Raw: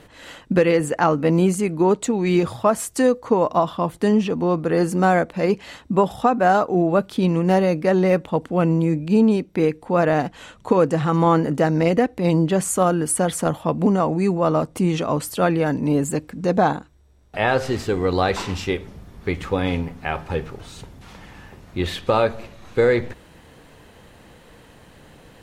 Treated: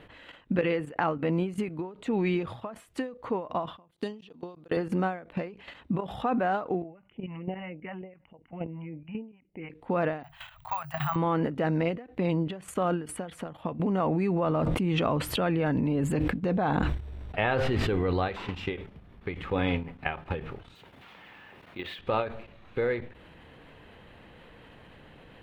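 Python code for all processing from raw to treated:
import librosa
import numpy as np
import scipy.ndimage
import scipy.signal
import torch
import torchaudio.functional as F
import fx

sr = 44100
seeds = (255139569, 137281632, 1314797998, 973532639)

y = fx.chain(x, sr, fx.highpass(hz=220.0, slope=6),
    fx.high_shelf_res(hz=3000.0, db=9.0, q=1.5),
    fx.level_steps(step_db=22), at=(3.91, 4.77))
y = fx.chain(y, sr, fx.cheby_ripple(hz=3000.0, ripple_db=9),
    fx.phaser_stages(stages=2, low_hz=390.0, high_hz=1500.0, hz=3.4, feedback_pct=10), at=(6.82, 9.7))
y = fx.chain(y, sr, fx.cheby1_bandstop(low_hz=150.0, high_hz=650.0, order=5),
    fx.high_shelf(hz=9100.0, db=6.0),
    fx.resample_bad(factor=2, down='none', up='zero_stuff'), at=(10.23, 11.16))
y = fx.chain(y, sr, fx.low_shelf(hz=140.0, db=6.0),
    fx.sustainer(db_per_s=34.0), at=(14.46, 18.28))
y = fx.chain(y, sr, fx.highpass(hz=450.0, slope=6),
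    fx.high_shelf(hz=2300.0, db=3.0),
    fx.resample_bad(factor=2, down='none', up='hold'), at=(20.75, 21.99))
y = fx.level_steps(y, sr, step_db=13)
y = fx.high_shelf_res(y, sr, hz=4300.0, db=-12.5, q=1.5)
y = fx.end_taper(y, sr, db_per_s=130.0)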